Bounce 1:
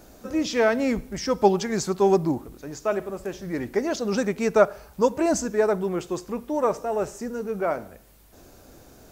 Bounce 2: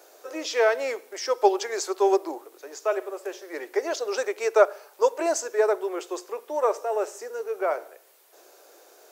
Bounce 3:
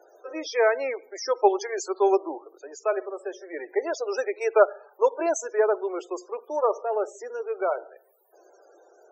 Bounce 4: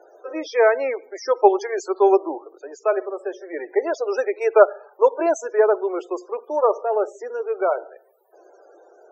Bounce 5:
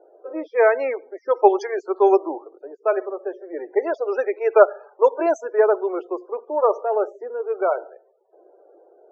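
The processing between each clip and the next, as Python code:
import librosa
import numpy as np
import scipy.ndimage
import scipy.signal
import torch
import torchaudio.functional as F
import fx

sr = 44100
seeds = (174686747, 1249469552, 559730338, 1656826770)

y1 = scipy.signal.sosfilt(scipy.signal.butter(8, 370.0, 'highpass', fs=sr, output='sos'), x)
y2 = fx.spec_topn(y1, sr, count=32)
y3 = fx.high_shelf(y2, sr, hz=3500.0, db=-11.5)
y3 = F.gain(torch.from_numpy(y3), 5.5).numpy()
y4 = fx.env_lowpass(y3, sr, base_hz=610.0, full_db=-11.5)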